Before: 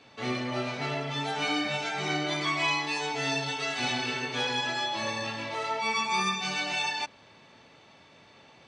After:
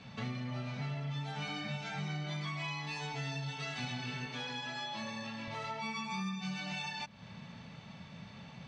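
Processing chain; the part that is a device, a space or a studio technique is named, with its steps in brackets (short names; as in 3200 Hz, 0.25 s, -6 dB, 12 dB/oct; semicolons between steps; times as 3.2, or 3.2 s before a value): jukebox (LPF 7200 Hz 12 dB/oct; resonant low shelf 250 Hz +9 dB, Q 3; compressor 4:1, threshold -40 dBFS, peak gain reduction 17.5 dB); 4.26–5.48 HPF 190 Hz 12 dB/oct; gain +1 dB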